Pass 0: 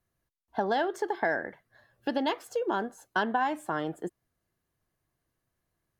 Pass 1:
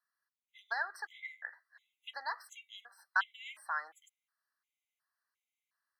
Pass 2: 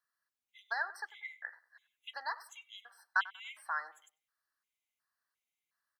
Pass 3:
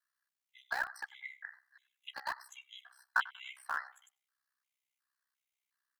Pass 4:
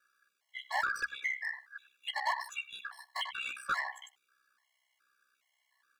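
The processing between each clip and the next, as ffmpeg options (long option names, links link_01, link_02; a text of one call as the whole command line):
ffmpeg -i in.wav -af "highpass=frequency=1200:width=0.5412,highpass=frequency=1200:width=1.3066,highshelf=frequency=3800:gain=-9,afftfilt=real='re*gt(sin(2*PI*1.4*pts/sr)*(1-2*mod(floor(b*sr/1024/2000),2)),0)':imag='im*gt(sin(2*PI*1.4*pts/sr)*(1-2*mod(floor(b*sr/1024/2000),2)),0)':win_size=1024:overlap=0.75,volume=3dB" out.wav
ffmpeg -i in.wav -filter_complex "[0:a]asplit=2[link_01][link_02];[link_02]adelay=95,lowpass=frequency=1900:poles=1,volume=-17dB,asplit=2[link_03][link_04];[link_04]adelay=95,lowpass=frequency=1900:poles=1,volume=0.31,asplit=2[link_05][link_06];[link_06]adelay=95,lowpass=frequency=1900:poles=1,volume=0.31[link_07];[link_01][link_03][link_05][link_07]amix=inputs=4:normalize=0" out.wav
ffmpeg -i in.wav -filter_complex "[0:a]highpass=410,aeval=exprs='val(0)*sin(2*PI*32*n/s)':channel_layout=same,acrossover=split=750|2000|6200[link_01][link_02][link_03][link_04];[link_01]acrusher=bits=7:mix=0:aa=0.000001[link_05];[link_05][link_02][link_03][link_04]amix=inputs=4:normalize=0,volume=2.5dB" out.wav
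ffmpeg -i in.wav -filter_complex "[0:a]asplit=2[link_01][link_02];[link_02]highpass=frequency=720:poles=1,volume=31dB,asoftclip=type=tanh:threshold=-16dB[link_03];[link_01][link_03]amix=inputs=2:normalize=0,lowpass=frequency=2400:poles=1,volume=-6dB,bandreject=frequency=60:width_type=h:width=6,bandreject=frequency=120:width_type=h:width=6,bandreject=frequency=180:width_type=h:width=6,bandreject=frequency=240:width_type=h:width=6,afftfilt=real='re*gt(sin(2*PI*1.2*pts/sr)*(1-2*mod(floor(b*sr/1024/560),2)),0)':imag='im*gt(sin(2*PI*1.2*pts/sr)*(1-2*mod(floor(b*sr/1024/560),2)),0)':win_size=1024:overlap=0.75,volume=-3.5dB" out.wav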